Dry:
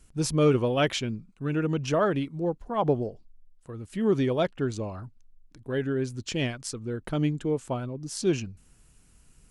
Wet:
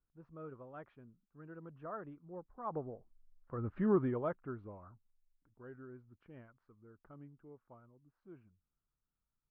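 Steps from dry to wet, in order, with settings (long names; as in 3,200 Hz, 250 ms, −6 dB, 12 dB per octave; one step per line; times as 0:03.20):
source passing by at 0:03.68, 15 m/s, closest 1.8 metres
transistor ladder low-pass 1,500 Hz, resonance 50%
level +10 dB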